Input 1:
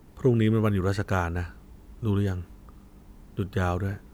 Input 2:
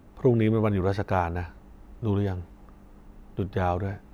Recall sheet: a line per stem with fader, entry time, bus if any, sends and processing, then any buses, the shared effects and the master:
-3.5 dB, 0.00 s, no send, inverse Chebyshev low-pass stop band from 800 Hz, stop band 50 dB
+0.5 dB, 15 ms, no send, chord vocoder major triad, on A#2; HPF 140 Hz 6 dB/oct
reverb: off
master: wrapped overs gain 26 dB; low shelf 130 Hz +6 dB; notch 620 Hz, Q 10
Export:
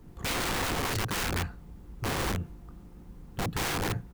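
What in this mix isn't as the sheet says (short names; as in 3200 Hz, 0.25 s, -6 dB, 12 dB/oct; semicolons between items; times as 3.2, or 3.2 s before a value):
stem 1: missing inverse Chebyshev low-pass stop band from 800 Hz, stop band 50 dB; stem 2: polarity flipped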